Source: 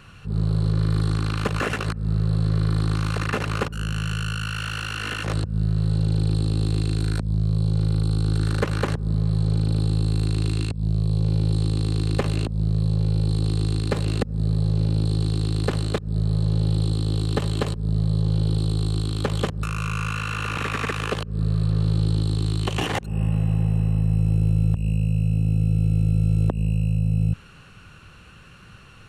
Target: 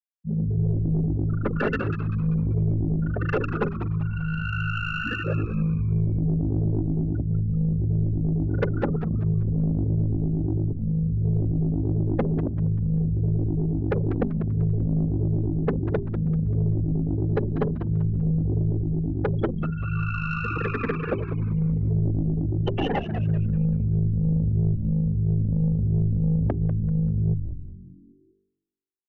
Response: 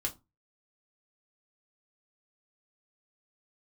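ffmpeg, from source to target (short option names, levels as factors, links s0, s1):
-filter_complex "[0:a]bandreject=f=1100:w=6.7,afftfilt=real='re*gte(hypot(re,im),0.0891)':imag='im*gte(hypot(re,im),0.0891)':win_size=1024:overlap=0.75,highpass=140,tiltshelf=f=1300:g=5,bandreject=f=50:t=h:w=6,bandreject=f=100:t=h:w=6,bandreject=f=150:t=h:w=6,bandreject=f=200:t=h:w=6,bandreject=f=250:t=h:w=6,bandreject=f=300:t=h:w=6,bandreject=f=350:t=h:w=6,bandreject=f=400:t=h:w=6,areverse,acompressor=mode=upward:threshold=0.0794:ratio=2.5,areverse,flanger=delay=1.7:depth=3.3:regen=-23:speed=1.5:shape=triangular,asoftclip=type=tanh:threshold=0.0794,asplit=2[s0][s1];[s1]asplit=5[s2][s3][s4][s5][s6];[s2]adelay=194,afreqshift=-97,volume=0.355[s7];[s3]adelay=388,afreqshift=-194,volume=0.146[s8];[s4]adelay=582,afreqshift=-291,volume=0.0596[s9];[s5]adelay=776,afreqshift=-388,volume=0.0245[s10];[s6]adelay=970,afreqshift=-485,volume=0.01[s11];[s7][s8][s9][s10][s11]amix=inputs=5:normalize=0[s12];[s0][s12]amix=inputs=2:normalize=0,volume=1.88"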